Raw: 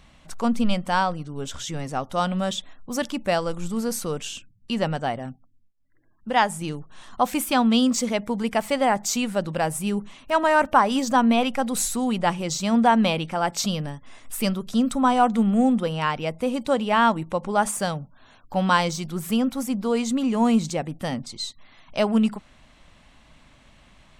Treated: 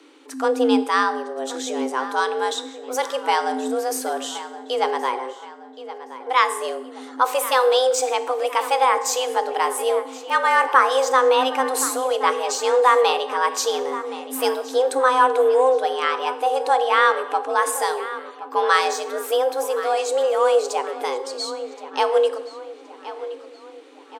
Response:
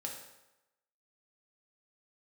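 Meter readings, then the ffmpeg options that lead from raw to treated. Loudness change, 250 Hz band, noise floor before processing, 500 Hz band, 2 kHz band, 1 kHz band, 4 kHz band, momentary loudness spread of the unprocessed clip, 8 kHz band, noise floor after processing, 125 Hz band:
+3.0 dB, −9.5 dB, −55 dBFS, +7.0 dB, +4.5 dB, +4.5 dB, +3.0 dB, 13 LU, +2.5 dB, −42 dBFS, below −35 dB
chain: -filter_complex "[0:a]asplit=2[link_01][link_02];[link_02]adelay=1072,lowpass=frequency=3600:poles=1,volume=-14dB,asplit=2[link_03][link_04];[link_04]adelay=1072,lowpass=frequency=3600:poles=1,volume=0.5,asplit=2[link_05][link_06];[link_06]adelay=1072,lowpass=frequency=3600:poles=1,volume=0.5,asplit=2[link_07][link_08];[link_08]adelay=1072,lowpass=frequency=3600:poles=1,volume=0.5,asplit=2[link_09][link_10];[link_10]adelay=1072,lowpass=frequency=3600:poles=1,volume=0.5[link_11];[link_01][link_03][link_05][link_07][link_09][link_11]amix=inputs=6:normalize=0,asplit=2[link_12][link_13];[1:a]atrim=start_sample=2205[link_14];[link_13][link_14]afir=irnorm=-1:irlink=0,volume=-4dB[link_15];[link_12][link_15]amix=inputs=2:normalize=0,afreqshift=260,volume=-1dB"

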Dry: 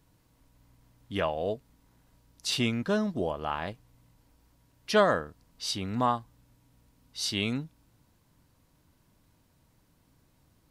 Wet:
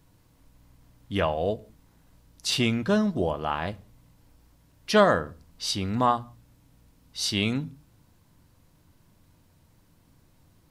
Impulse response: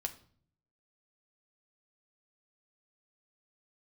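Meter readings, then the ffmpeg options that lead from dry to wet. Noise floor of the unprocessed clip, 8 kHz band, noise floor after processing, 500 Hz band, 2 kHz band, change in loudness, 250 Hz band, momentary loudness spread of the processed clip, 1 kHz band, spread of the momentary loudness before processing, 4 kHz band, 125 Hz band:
−67 dBFS, +3.5 dB, −62 dBFS, +3.5 dB, +3.5 dB, +4.0 dB, +4.5 dB, 15 LU, +4.0 dB, 15 LU, +3.5 dB, +5.0 dB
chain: -filter_complex "[0:a]asplit=2[link_01][link_02];[link_02]lowshelf=frequency=200:gain=7[link_03];[1:a]atrim=start_sample=2205,afade=type=out:start_time=0.25:duration=0.01,atrim=end_sample=11466[link_04];[link_03][link_04]afir=irnorm=-1:irlink=0,volume=-5dB[link_05];[link_01][link_05]amix=inputs=2:normalize=0"

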